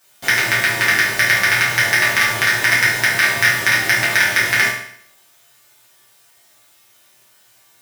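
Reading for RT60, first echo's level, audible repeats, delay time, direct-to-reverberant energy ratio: 0.60 s, no echo audible, no echo audible, no echo audible, −9.5 dB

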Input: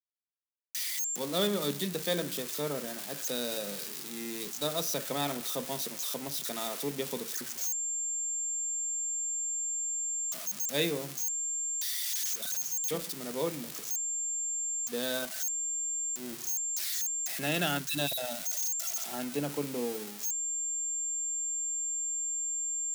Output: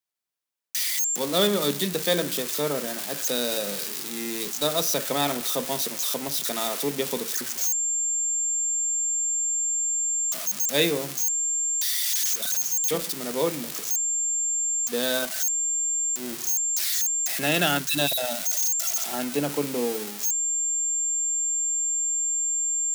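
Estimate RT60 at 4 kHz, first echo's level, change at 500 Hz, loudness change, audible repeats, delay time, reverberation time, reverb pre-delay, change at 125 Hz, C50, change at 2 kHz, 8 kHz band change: no reverb audible, no echo audible, +7.5 dB, +8.0 dB, no echo audible, no echo audible, no reverb audible, no reverb audible, +5.0 dB, no reverb audible, +8.0 dB, +8.0 dB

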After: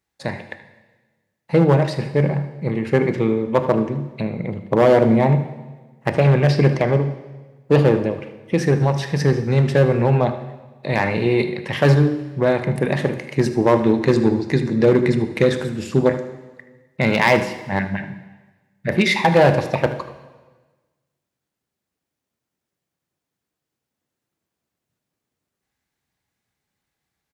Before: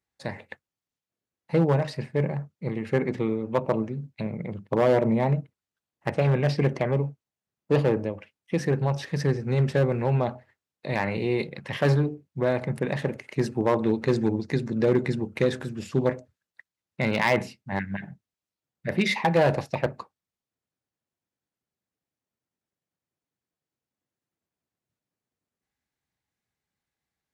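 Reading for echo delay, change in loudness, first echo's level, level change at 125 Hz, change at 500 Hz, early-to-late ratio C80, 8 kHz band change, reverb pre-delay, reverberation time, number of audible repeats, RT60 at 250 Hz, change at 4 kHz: 77 ms, +7.5 dB, −14.5 dB, +7.5 dB, +7.5 dB, 13.0 dB, +7.5 dB, 21 ms, 1.3 s, 1, 1.4 s, +7.5 dB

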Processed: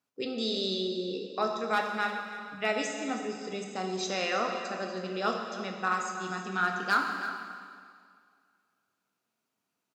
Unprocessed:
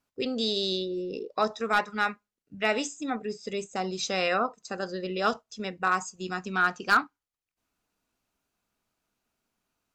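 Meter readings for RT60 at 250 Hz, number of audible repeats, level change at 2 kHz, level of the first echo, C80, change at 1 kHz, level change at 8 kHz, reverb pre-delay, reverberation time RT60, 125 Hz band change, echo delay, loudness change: 2.1 s, 1, −2.5 dB, −13.5 dB, 4.5 dB, −2.5 dB, −2.5 dB, 5 ms, 2.1 s, −2.0 dB, 322 ms, −3.0 dB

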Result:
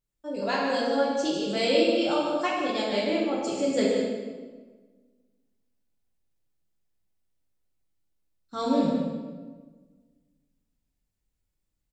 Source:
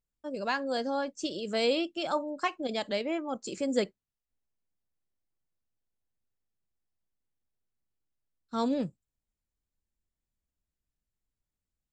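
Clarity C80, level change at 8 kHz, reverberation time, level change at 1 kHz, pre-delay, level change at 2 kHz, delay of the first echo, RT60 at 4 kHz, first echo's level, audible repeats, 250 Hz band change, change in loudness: 1.0 dB, +5.0 dB, 1.4 s, +4.5 dB, 4 ms, +4.5 dB, 152 ms, 1.0 s, −6.5 dB, 1, +7.0 dB, +5.5 dB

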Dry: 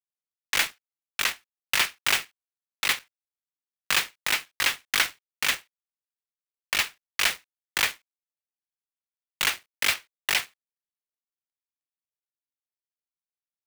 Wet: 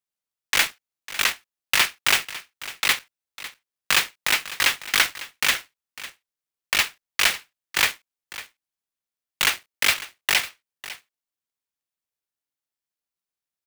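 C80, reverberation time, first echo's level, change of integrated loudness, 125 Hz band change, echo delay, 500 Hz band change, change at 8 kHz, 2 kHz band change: no reverb audible, no reverb audible, −16.0 dB, +4.0 dB, +4.0 dB, 551 ms, +4.0 dB, +4.0 dB, +4.0 dB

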